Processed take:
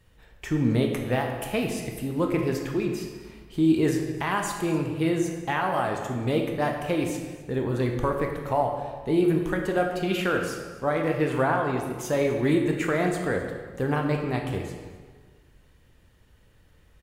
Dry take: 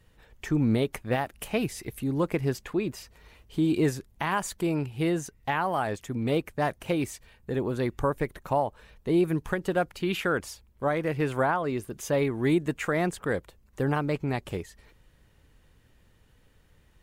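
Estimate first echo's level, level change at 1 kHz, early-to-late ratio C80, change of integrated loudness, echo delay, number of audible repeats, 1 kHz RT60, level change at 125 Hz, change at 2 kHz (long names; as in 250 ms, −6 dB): −19.5 dB, +2.0 dB, 6.0 dB, +2.5 dB, 260 ms, 1, 1.5 s, +2.0 dB, +2.0 dB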